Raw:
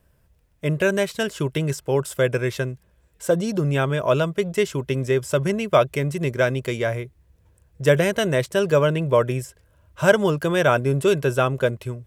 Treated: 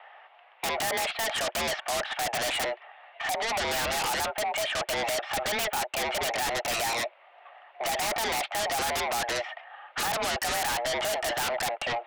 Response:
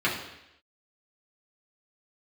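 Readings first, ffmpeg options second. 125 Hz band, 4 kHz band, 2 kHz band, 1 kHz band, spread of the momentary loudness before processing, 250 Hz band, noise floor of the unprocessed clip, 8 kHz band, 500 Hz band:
-23.5 dB, +3.5 dB, -3.0 dB, 0.0 dB, 7 LU, -17.5 dB, -61 dBFS, +4.5 dB, -12.0 dB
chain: -af "highpass=f=420:t=q:w=0.5412,highpass=f=420:t=q:w=1.307,lowpass=f=2900:t=q:w=0.5176,lowpass=f=2900:t=q:w=0.7071,lowpass=f=2900:t=q:w=1.932,afreqshift=230,acompressor=threshold=0.0282:ratio=3,asoftclip=type=hard:threshold=0.0237,acontrast=52,aeval=exprs='0.0501*sin(PI/2*3.55*val(0)/0.0501)':c=same"

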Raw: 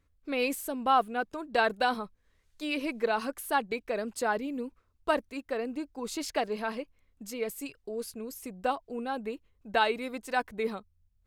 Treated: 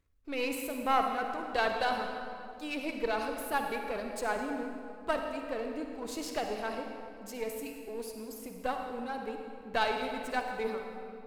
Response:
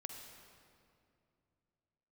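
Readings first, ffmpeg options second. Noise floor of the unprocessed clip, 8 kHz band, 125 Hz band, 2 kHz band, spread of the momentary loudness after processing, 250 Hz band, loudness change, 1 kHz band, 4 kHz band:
-71 dBFS, -3.5 dB, no reading, -2.5 dB, 11 LU, -3.0 dB, -3.0 dB, -2.5 dB, -2.5 dB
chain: -filter_complex "[0:a]aeval=exprs='if(lt(val(0),0),0.447*val(0),val(0))':c=same[s0];[1:a]atrim=start_sample=2205[s1];[s0][s1]afir=irnorm=-1:irlink=0,volume=1.41"

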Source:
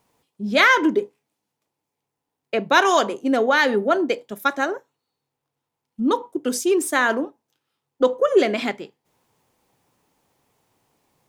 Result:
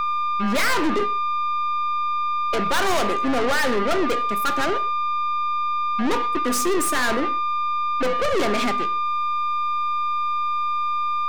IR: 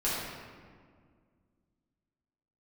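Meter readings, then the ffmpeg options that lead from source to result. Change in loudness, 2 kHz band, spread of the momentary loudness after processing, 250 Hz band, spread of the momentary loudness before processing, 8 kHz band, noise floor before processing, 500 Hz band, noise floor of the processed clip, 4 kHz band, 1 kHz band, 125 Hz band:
-2.0 dB, -3.5 dB, 3 LU, -2.0 dB, 11 LU, +2.0 dB, -82 dBFS, -3.5 dB, -23 dBFS, 0.0 dB, +5.0 dB, no reading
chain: -filter_complex "[0:a]aeval=exprs='val(0)+0.0501*sin(2*PI*1200*n/s)':c=same,aeval=exprs='(tanh(25.1*val(0)+0.4)-tanh(0.4))/25.1':c=same,asplit=2[s0][s1];[1:a]atrim=start_sample=2205,atrim=end_sample=6615[s2];[s1][s2]afir=irnorm=-1:irlink=0,volume=0.0944[s3];[s0][s3]amix=inputs=2:normalize=0,volume=2.37"

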